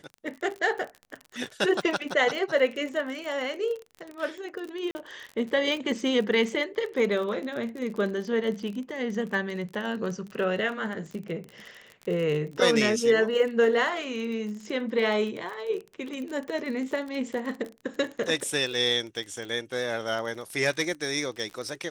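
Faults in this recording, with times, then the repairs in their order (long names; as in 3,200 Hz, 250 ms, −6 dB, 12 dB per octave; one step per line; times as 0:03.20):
surface crackle 34 per second −33 dBFS
0:04.91–0:04.95: drop-out 40 ms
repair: click removal
repair the gap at 0:04.91, 40 ms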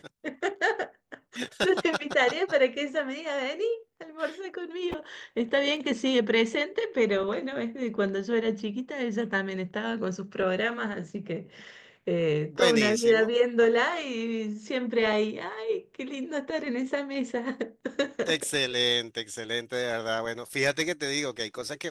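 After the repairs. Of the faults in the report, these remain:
none of them is left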